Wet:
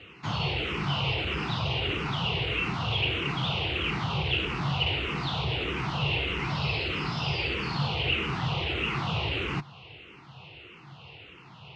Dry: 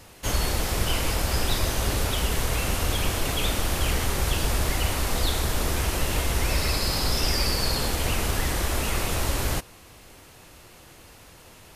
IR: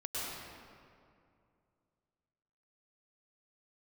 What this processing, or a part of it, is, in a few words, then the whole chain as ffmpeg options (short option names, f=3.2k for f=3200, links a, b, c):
barber-pole phaser into a guitar amplifier: -filter_complex "[0:a]highpass=73,asplit=2[a][b];[b]afreqshift=-1.6[c];[a][c]amix=inputs=2:normalize=1,asoftclip=type=tanh:threshold=-27dB,highpass=88,equalizer=f=140:t=q:w=4:g=10,equalizer=f=250:t=q:w=4:g=-8,equalizer=f=580:t=q:w=4:g=-9,equalizer=f=1.7k:t=q:w=4:g=-8,equalizer=f=2.8k:t=q:w=4:g=9,lowpass=f=3.5k:w=0.5412,lowpass=f=3.5k:w=1.3066,volume=5dB"